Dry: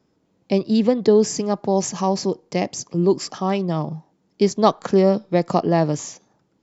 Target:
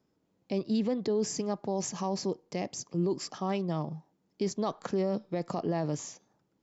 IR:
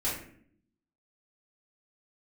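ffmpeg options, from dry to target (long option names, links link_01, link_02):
-af "alimiter=limit=-12dB:level=0:latency=1:release=19,volume=-9dB"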